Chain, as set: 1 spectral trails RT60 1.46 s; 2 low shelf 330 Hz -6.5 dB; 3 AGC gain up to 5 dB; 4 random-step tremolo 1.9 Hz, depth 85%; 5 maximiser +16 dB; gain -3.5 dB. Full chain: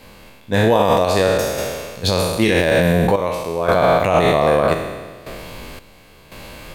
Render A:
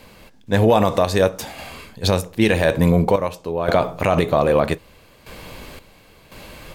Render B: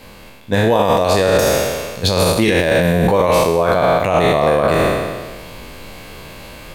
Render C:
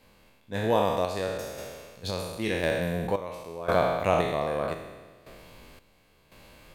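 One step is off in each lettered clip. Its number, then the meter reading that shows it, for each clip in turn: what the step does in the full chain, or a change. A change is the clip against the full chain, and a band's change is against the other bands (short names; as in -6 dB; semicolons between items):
1, 125 Hz band +4.0 dB; 4, 8 kHz band +3.0 dB; 5, crest factor change +8.0 dB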